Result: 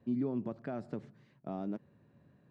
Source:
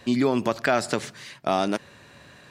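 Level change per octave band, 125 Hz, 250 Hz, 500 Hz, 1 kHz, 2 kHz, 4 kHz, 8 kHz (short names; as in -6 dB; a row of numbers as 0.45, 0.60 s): -9.0 dB, -10.0 dB, -16.5 dB, -21.5 dB, -27.5 dB, under -30 dB, under -40 dB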